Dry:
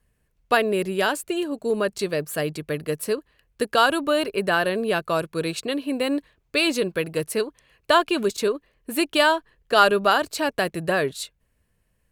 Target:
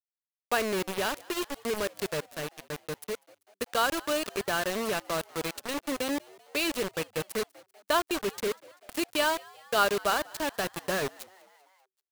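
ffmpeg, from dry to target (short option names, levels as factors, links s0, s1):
-filter_complex "[0:a]acrusher=bits=3:mix=0:aa=0.000001,asettb=1/sr,asplit=3[s0][s1][s2];[s0]atrim=end=2.204[s3];[s1]atrim=start=2.2:end=3.7,asetpts=PTS-STARTPTS,afade=t=in:d=0.004:c=qsin,afade=t=out:st=1.496:d=0.004:c=qsin,aeval=exprs='0.299*(cos(1*acos(clip(val(0)/0.299,-1,1)))-cos(1*PI/2))+0.0473*(cos(3*acos(clip(val(0)/0.299,-1,1)))-cos(3*PI/2))':c=same[s4];[s2]atrim=start=3.696[s5];[s3][s4]acrossfade=d=0.004:c1=hsin:c2=qsin[s6];[s6][s5]acrossfade=d=0.004:c1=qsin:c2=hsin,asplit=2[s7][s8];[s8]asplit=4[s9][s10][s11][s12];[s9]adelay=194,afreqshift=95,volume=0.0631[s13];[s10]adelay=388,afreqshift=190,volume=0.0398[s14];[s11]adelay=582,afreqshift=285,volume=0.0251[s15];[s12]adelay=776,afreqshift=380,volume=0.0158[s16];[s13][s14][s15][s16]amix=inputs=4:normalize=0[s17];[s7][s17]amix=inputs=2:normalize=0,volume=0.376"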